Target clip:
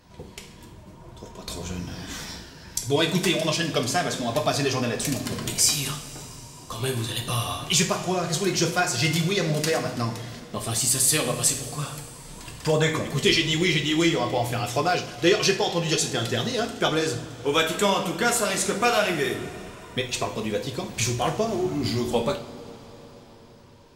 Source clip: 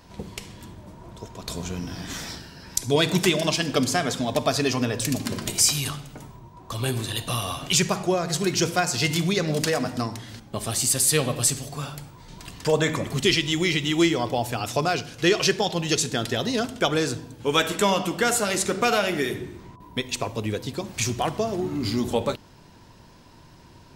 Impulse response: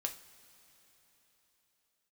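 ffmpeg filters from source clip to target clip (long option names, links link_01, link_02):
-filter_complex "[0:a]dynaudnorm=framelen=220:gausssize=11:maxgain=5dB,flanger=delay=0.4:depth=4.7:regen=-53:speed=1.1:shape=triangular[link_01];[1:a]atrim=start_sample=2205,asetrate=40572,aresample=44100[link_02];[link_01][link_02]afir=irnorm=-1:irlink=0"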